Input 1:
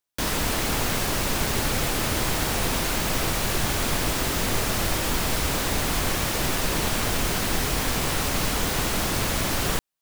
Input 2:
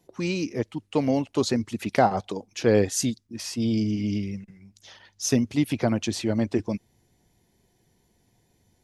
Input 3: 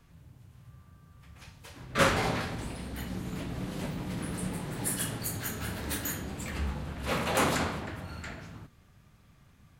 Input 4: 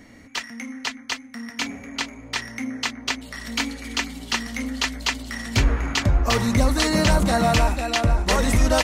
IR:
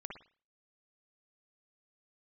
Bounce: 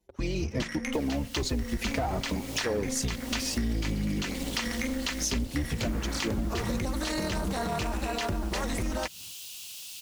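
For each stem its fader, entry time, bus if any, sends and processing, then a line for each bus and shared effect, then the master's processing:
-1.0 dB, 0.75 s, bus B, no send, elliptic high-pass 2700 Hz
-7.0 dB, 0.00 s, bus A, send -6 dB, octaver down 2 oct, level +3 dB; sample leveller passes 2; tape flanging out of phase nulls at 0.57 Hz, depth 7.2 ms
-2.5 dB, 0.65 s, bus B, no send, dry
+0.5 dB, 0.25 s, bus A, no send, gate with hold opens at -37 dBFS; AM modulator 270 Hz, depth 70%
bus A: 0.0 dB, AGC gain up to 11.5 dB; limiter -11.5 dBFS, peak gain reduction 10 dB
bus B: 0.0 dB, hard clip -27.5 dBFS, distortion -12 dB; limiter -37.5 dBFS, peak gain reduction 10 dB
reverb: on, pre-delay 52 ms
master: compressor 6:1, threshold -27 dBFS, peak gain reduction 13 dB

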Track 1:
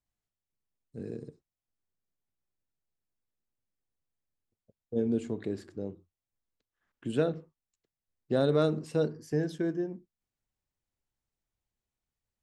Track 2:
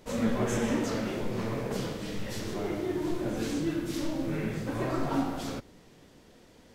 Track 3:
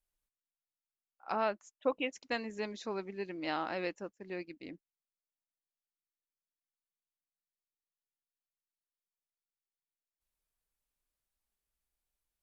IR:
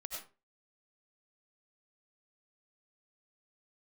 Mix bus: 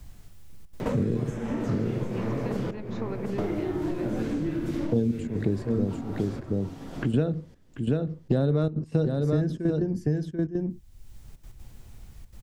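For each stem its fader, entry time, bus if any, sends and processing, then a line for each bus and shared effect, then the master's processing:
+1.5 dB, 0.00 s, no send, echo send -7 dB, low shelf 120 Hz +11 dB; step gate "xxxxxxxx.x." 185 bpm -12 dB
-7.5 dB, 0.80 s, muted 2.71–3.38, no send, echo send -13.5 dB, compressor 3:1, threshold -38 dBFS, peak gain reduction 12 dB
-18.0 dB, 0.15 s, no send, no echo send, compressor, threshold -38 dBFS, peak gain reduction 12 dB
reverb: off
echo: echo 0.737 s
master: low shelf 210 Hz +11.5 dB; three-band squash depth 100%

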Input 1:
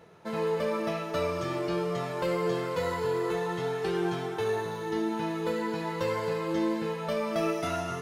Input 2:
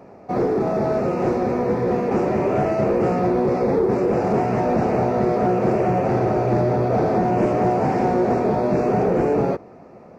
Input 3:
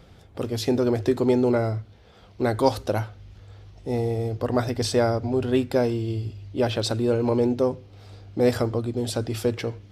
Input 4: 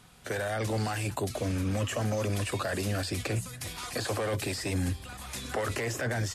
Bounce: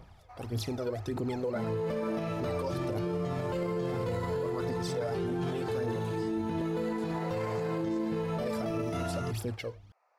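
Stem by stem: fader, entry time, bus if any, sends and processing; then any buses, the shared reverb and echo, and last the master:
-2.0 dB, 1.30 s, no send, low shelf 410 Hz +11 dB
-7.0 dB, 0.00 s, no send, HPF 850 Hz 24 dB/oct; limiter -24.5 dBFS, peak gain reduction 7 dB; auto duck -14 dB, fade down 0.40 s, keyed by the third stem
-11.0 dB, 0.00 s, muted 6.62–7.8, no send, bell 11000 Hz +4.5 dB 0.24 oct; phaser 1.7 Hz, delay 2.1 ms, feedback 72%
-4.5 dB, 1.65 s, no send, limiter -28.5 dBFS, peak gain reduction 9 dB; spectral expander 1.5:1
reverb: off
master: limiter -25 dBFS, peak gain reduction 13 dB

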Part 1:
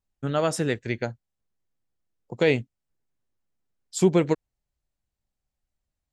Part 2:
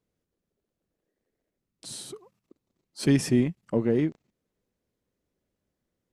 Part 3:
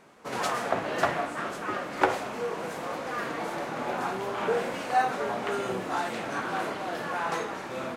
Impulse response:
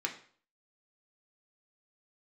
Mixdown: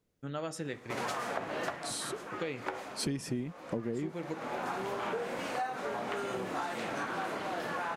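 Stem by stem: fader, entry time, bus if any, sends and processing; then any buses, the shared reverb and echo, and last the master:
-14.0 dB, 0.00 s, send -8 dB, dry
+2.5 dB, 0.00 s, no send, dry
-1.0 dB, 0.65 s, send -21.5 dB, auto duck -10 dB, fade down 0.20 s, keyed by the second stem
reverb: on, RT60 0.50 s, pre-delay 3 ms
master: compressor 8:1, threshold -32 dBFS, peak gain reduction 17.5 dB

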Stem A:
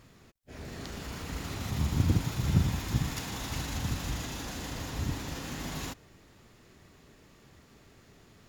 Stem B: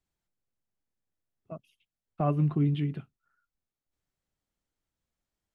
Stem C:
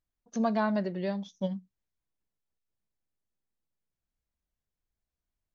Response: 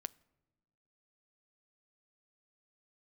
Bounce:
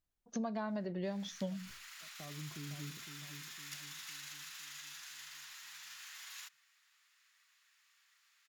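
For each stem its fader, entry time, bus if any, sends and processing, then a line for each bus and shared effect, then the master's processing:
-7.0 dB, 0.55 s, no send, no echo send, HPF 1400 Hz 24 dB/oct
-17.5 dB, 0.00 s, no send, echo send -8 dB, limiter -23 dBFS, peak gain reduction 8.5 dB
-1.5 dB, 0.00 s, no send, no echo send, sustainer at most 120 dB/s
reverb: off
echo: feedback echo 0.509 s, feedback 48%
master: compressor 6:1, threshold -35 dBFS, peak gain reduction 11 dB

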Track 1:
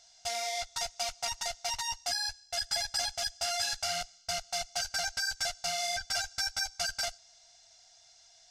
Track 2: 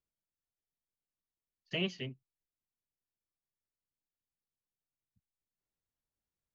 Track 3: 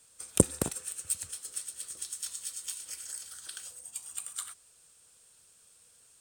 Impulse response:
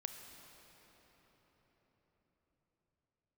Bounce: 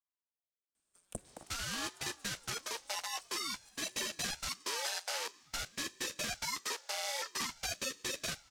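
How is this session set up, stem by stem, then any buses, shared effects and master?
+0.5 dB, 1.25 s, send -17.5 dB, spectral contrast lowered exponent 0.6; steep high-pass 470 Hz 72 dB/oct
-11.5 dB, 0.00 s, send -5.5 dB, dry
-17.0 dB, 0.75 s, send -10 dB, dry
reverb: on, RT60 5.2 s, pre-delay 27 ms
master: high shelf 3700 Hz -6.5 dB; ring modulator with a swept carrier 580 Hz, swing 85%, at 0.5 Hz

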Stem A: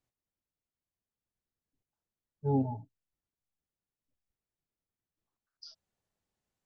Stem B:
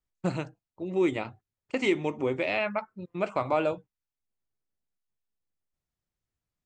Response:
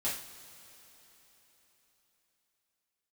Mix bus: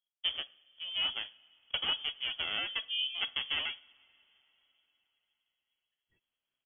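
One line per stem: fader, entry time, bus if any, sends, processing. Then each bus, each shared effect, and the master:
-2.5 dB, 0.45 s, no send, noise-modulated level, depth 60%
-7.5 dB, 0.00 s, send -19 dB, reverb removal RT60 0.87 s; running maximum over 33 samples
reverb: on, pre-delay 3 ms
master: high shelf 2200 Hz +9.5 dB; inverted band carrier 3300 Hz

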